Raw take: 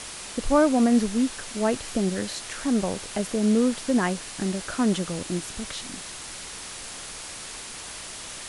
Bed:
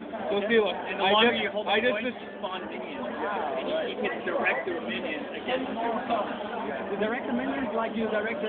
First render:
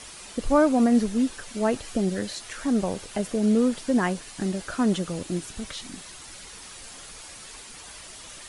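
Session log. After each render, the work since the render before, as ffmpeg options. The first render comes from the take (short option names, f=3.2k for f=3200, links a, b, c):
-af "afftdn=nr=8:nf=-39"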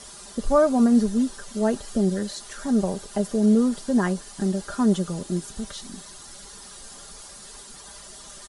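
-af "equalizer=f=2.4k:t=o:w=0.72:g=-10.5,aecho=1:1:5:0.53"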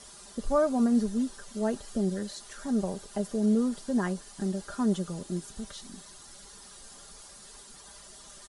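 -af "volume=-6.5dB"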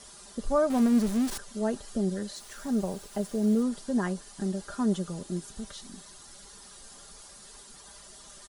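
-filter_complex "[0:a]asettb=1/sr,asplit=3[a][b][c];[a]atrim=end=0.704[d];[b]atrim=start=0.7:end=1.38,asetpts=PTS-STARTPTS,afade=t=in:d=0.004:c=qsin,afade=t=out:st=0.676:d=0.004:c=qsin,aeval=exprs='val(0)+0.5*0.0282*sgn(val(0))':c=same[e];[c]atrim=start=1.376[f];[d][e]acrossfade=d=0.004:c1=hsin:c2=qsin[g];[g][f]acrossfade=d=0.004:c1=qsin:c2=hsin,asettb=1/sr,asplit=3[h][i][j];[h]atrim=end=2.354[k];[i]atrim=start=2.35:end=3.63,asetpts=PTS-STARTPTS,afade=t=in:d=0.004:c=qsin,afade=t=out:st=1.276:d=0.004:c=qsin,acrusher=bits=7:mix=0:aa=0.5[l];[j]atrim=start=3.626[m];[k][l]acrossfade=d=0.004:c1=hsin:c2=qsin[n];[n][m]acrossfade=d=0.004:c1=qsin:c2=hsin"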